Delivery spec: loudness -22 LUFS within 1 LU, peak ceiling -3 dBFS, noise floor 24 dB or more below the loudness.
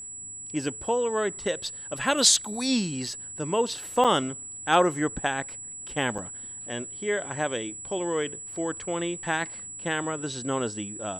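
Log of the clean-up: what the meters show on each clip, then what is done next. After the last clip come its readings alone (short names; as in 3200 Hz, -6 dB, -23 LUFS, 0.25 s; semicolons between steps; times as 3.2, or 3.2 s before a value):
dropouts 2; longest dropout 6.2 ms; steady tone 7800 Hz; tone level -37 dBFS; loudness -27.5 LUFS; peak -7.5 dBFS; loudness target -22.0 LUFS
-> interpolate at 4.04/6.18, 6.2 ms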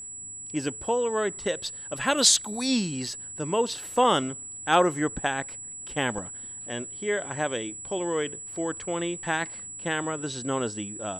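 dropouts 0; steady tone 7800 Hz; tone level -37 dBFS
-> notch 7800 Hz, Q 30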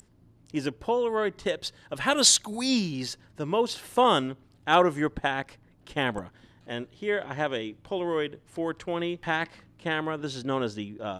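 steady tone none; loudness -27.5 LUFS; peak -7.5 dBFS; loudness target -22.0 LUFS
-> gain +5.5 dB; limiter -3 dBFS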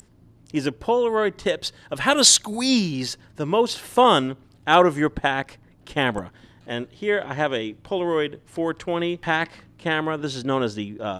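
loudness -22.0 LUFS; peak -3.0 dBFS; noise floor -54 dBFS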